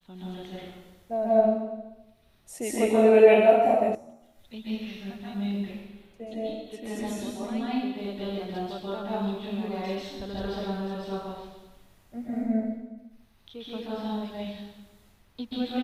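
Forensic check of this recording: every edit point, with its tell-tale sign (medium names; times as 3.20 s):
3.95 s: sound stops dead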